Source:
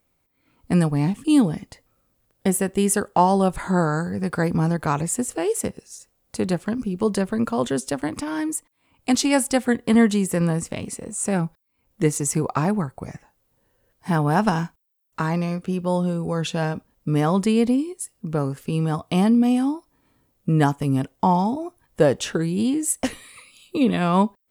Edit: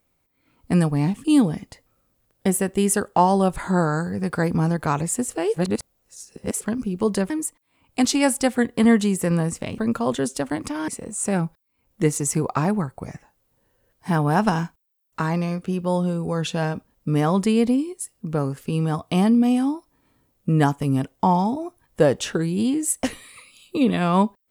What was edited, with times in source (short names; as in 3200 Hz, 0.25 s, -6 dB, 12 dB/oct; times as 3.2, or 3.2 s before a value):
5.54–6.61 reverse
7.3–8.4 move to 10.88